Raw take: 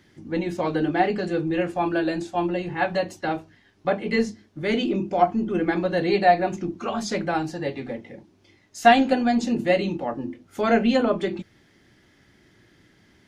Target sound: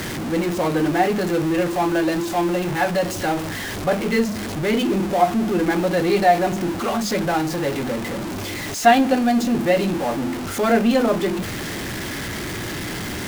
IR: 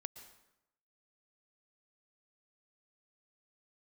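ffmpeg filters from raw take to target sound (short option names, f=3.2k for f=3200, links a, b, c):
-filter_complex "[0:a]aeval=exprs='val(0)+0.5*0.075*sgn(val(0))':c=same,asplit=2[a][b];[1:a]atrim=start_sample=2205,lowpass=2.6k[c];[b][c]afir=irnorm=-1:irlink=0,volume=-10dB[d];[a][d]amix=inputs=2:normalize=0,volume=-1dB"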